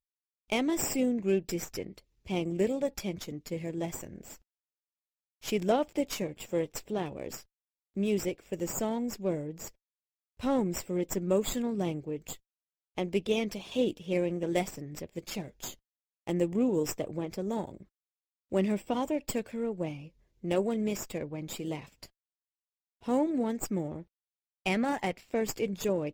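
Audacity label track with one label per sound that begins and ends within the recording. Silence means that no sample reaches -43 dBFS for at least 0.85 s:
5.430000	22.060000	sound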